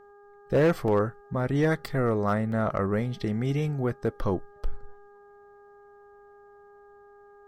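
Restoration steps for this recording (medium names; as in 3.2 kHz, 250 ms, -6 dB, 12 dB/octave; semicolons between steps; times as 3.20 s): clip repair -16 dBFS; de-hum 407.1 Hz, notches 4; interpolate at 0.88/2.52 s, 1.9 ms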